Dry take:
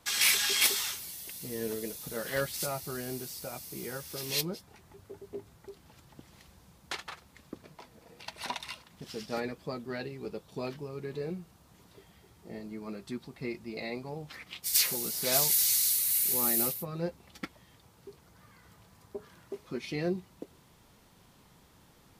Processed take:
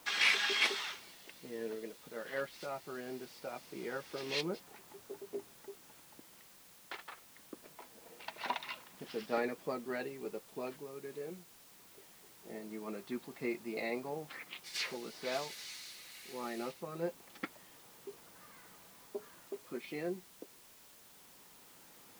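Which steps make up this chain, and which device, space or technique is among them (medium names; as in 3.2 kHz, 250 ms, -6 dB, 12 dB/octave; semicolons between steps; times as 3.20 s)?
shortwave radio (band-pass 260–2900 Hz; tremolo 0.22 Hz, depth 58%; white noise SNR 18 dB); trim +1.5 dB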